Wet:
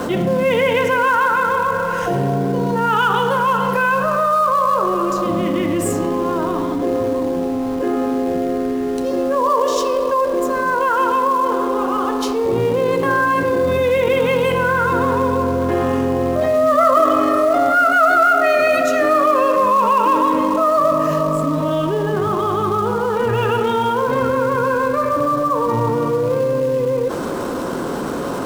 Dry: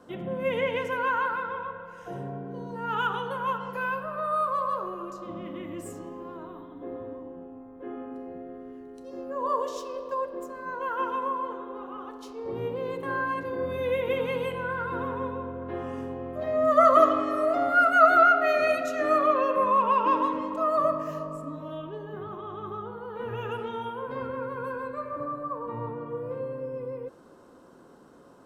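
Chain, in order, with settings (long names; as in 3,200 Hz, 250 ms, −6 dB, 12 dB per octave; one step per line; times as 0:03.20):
in parallel at −11.5 dB: log-companded quantiser 4 bits
on the sum: envelope flattener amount 70%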